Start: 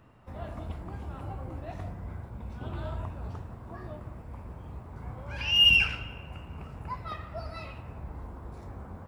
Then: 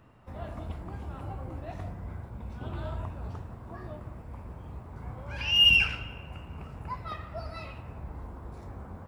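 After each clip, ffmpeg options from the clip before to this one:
-af anull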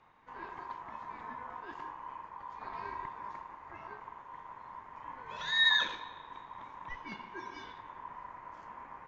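-af "afreqshift=-36,aeval=exprs='val(0)*sin(2*PI*990*n/s)':c=same,aresample=16000,aresample=44100,volume=-3.5dB"

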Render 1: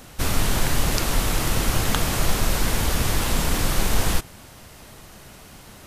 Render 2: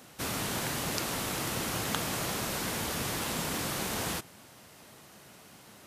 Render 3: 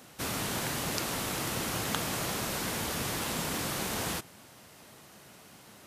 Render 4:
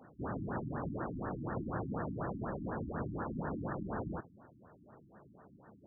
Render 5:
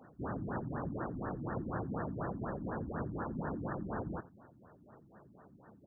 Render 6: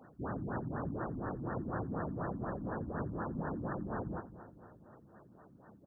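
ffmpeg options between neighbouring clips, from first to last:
-af "highpass=140,volume=-7.5dB"
-af anull
-af "afftfilt=real='re*lt(b*sr/1024,320*pow(1900/320,0.5+0.5*sin(2*PI*4.1*pts/sr)))':imag='im*lt(b*sr/1024,320*pow(1900/320,0.5+0.5*sin(2*PI*4.1*pts/sr)))':win_size=1024:overlap=0.75,volume=-1.5dB"
-filter_complex "[0:a]asplit=2[a][b];[b]adelay=87.46,volume=-22dB,highshelf=f=4k:g=-1.97[c];[a][c]amix=inputs=2:normalize=0"
-af "aecho=1:1:231|462|693|924|1155|1386:0.224|0.121|0.0653|0.0353|0.019|0.0103"

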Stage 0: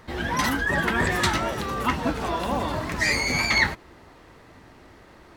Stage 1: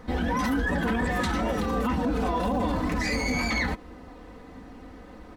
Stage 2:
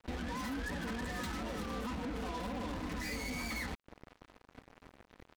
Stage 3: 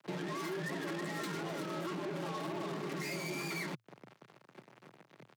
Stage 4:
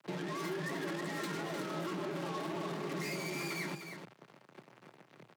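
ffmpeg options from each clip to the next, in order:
-af "tiltshelf=f=890:g=5.5,aecho=1:1:4:0.79,alimiter=limit=-18.5dB:level=0:latency=1:release=27"
-af "equalizer=f=680:w=1.7:g=-2.5,acompressor=threshold=-34dB:ratio=3,acrusher=bits=5:mix=0:aa=0.5,volume=-5dB"
-af "afreqshift=110"
-af "aecho=1:1:304:0.376"

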